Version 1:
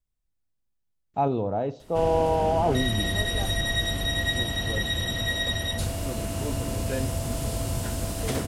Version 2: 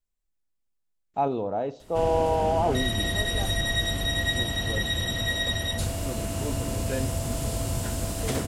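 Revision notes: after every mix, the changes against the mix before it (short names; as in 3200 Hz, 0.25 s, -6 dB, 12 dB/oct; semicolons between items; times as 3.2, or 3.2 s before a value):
speech: add bell 88 Hz -9.5 dB 2.1 oct; master: add bell 7400 Hz +3 dB 0.27 oct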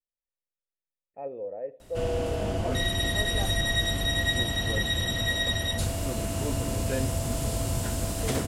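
speech: add vocal tract filter e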